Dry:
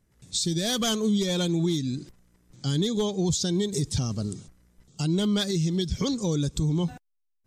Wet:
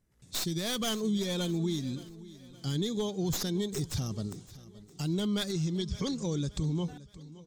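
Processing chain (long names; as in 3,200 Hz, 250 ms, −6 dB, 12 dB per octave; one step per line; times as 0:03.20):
stylus tracing distortion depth 0.055 ms
0:05.52–0:06.84: low-pass filter 8,700 Hz 24 dB per octave
on a send: repeating echo 570 ms, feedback 43%, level −18 dB
on the sum: level −6 dB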